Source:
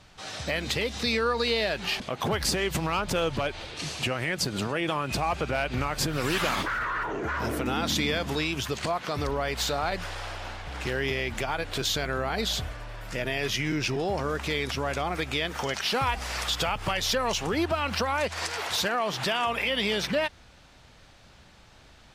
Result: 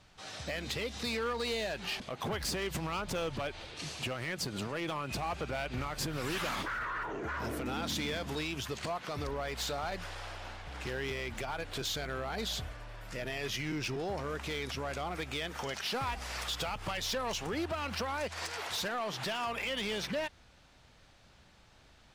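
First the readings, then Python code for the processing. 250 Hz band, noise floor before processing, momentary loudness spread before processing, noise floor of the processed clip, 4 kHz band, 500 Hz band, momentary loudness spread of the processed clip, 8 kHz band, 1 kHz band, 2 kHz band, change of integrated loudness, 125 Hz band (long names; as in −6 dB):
−8.0 dB, −54 dBFS, 5 LU, −61 dBFS, −8.0 dB, −8.0 dB, 5 LU, −7.5 dB, −8.0 dB, −8.0 dB, −8.0 dB, −7.5 dB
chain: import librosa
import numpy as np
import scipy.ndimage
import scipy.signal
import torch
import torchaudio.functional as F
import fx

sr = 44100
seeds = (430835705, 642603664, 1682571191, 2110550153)

y = np.clip(x, -10.0 ** (-23.0 / 20.0), 10.0 ** (-23.0 / 20.0))
y = y * 10.0 ** (-7.0 / 20.0)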